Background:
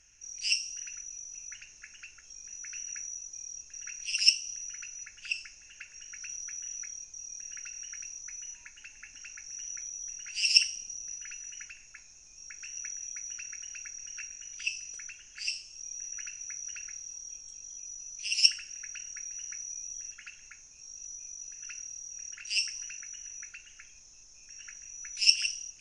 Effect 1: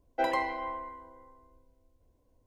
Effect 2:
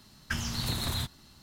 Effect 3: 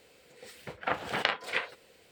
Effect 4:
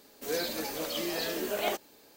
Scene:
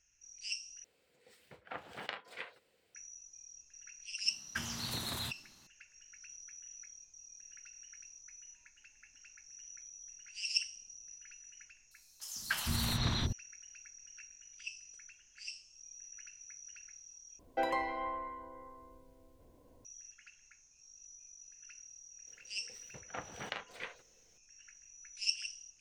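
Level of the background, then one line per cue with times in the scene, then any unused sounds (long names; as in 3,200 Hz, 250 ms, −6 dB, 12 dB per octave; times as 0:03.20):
background −11.5 dB
0:00.84: overwrite with 3 −14 dB
0:04.25: mix in 2 −5 dB + high-pass filter 220 Hz 6 dB per octave
0:11.91: mix in 2 + three-band delay without the direct sound highs, mids, lows 290/450 ms, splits 530/5,200 Hz
0:17.39: overwrite with 1 −2 dB + multiband upward and downward compressor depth 40%
0:22.27: mix in 3 −13.5 dB + low-shelf EQ 140 Hz +11 dB
not used: 4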